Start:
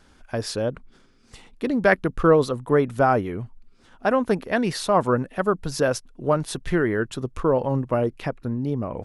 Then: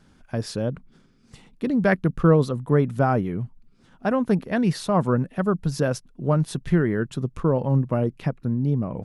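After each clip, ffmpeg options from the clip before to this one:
ffmpeg -i in.wav -af "equalizer=frequency=160:width_type=o:width=1.3:gain=12,volume=-4.5dB" out.wav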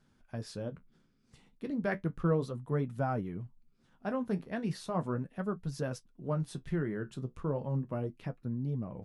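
ffmpeg -i in.wav -af "flanger=delay=7.7:depth=8.3:regen=-50:speed=0.35:shape=triangular,volume=-8.5dB" out.wav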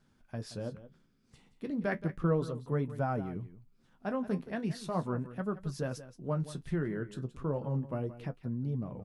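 ffmpeg -i in.wav -af "aecho=1:1:175:0.188" out.wav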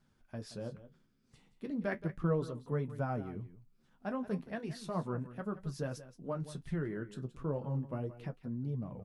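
ffmpeg -i in.wav -af "flanger=delay=0.9:depth=8:regen=-61:speed=0.45:shape=triangular,volume=1dB" out.wav

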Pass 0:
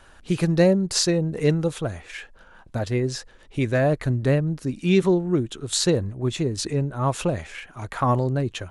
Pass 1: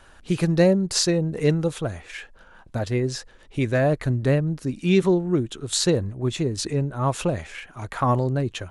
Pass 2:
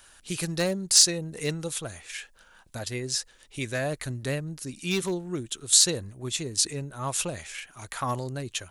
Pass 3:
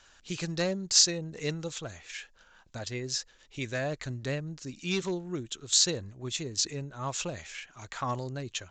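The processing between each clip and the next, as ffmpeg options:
ffmpeg -i in.wav -af anull out.wav
ffmpeg -i in.wav -af "asoftclip=type=hard:threshold=-11dB,crystalizer=i=8:c=0,volume=-11dB" out.wav
ffmpeg -i in.wav -af "aresample=16000,aresample=44100,volume=-3dB" out.wav

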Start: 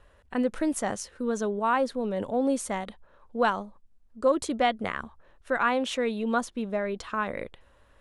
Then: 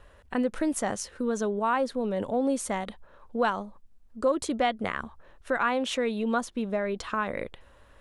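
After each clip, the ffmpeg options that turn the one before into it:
ffmpeg -i in.wav -af "acompressor=threshold=-35dB:ratio=1.5,volume=4dB" out.wav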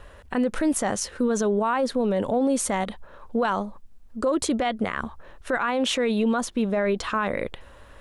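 ffmpeg -i in.wav -af "alimiter=limit=-23.5dB:level=0:latency=1:release=29,volume=8dB" out.wav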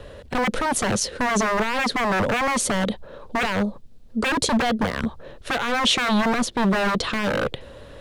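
ffmpeg -i in.wav -filter_complex "[0:a]equalizer=frequency=125:width_type=o:width=1:gain=10,equalizer=frequency=250:width_type=o:width=1:gain=5,equalizer=frequency=500:width_type=o:width=1:gain=10,equalizer=frequency=1000:width_type=o:width=1:gain=-3,equalizer=frequency=4000:width_type=o:width=1:gain=8,acrossover=split=170|3100[link_01][link_02][link_03];[link_02]aeval=exprs='0.119*(abs(mod(val(0)/0.119+3,4)-2)-1)':channel_layout=same[link_04];[link_01][link_04][link_03]amix=inputs=3:normalize=0,volume=1.5dB" out.wav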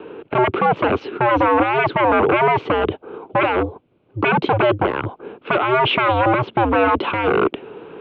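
ffmpeg -i in.wav -af "highpass=frequency=310:width_type=q:width=0.5412,highpass=frequency=310:width_type=q:width=1.307,lowpass=frequency=2800:width_type=q:width=0.5176,lowpass=frequency=2800:width_type=q:width=0.7071,lowpass=frequency=2800:width_type=q:width=1.932,afreqshift=-120,equalizer=frequency=1800:width_type=o:width=0.34:gain=-12,volume=8.5dB" out.wav

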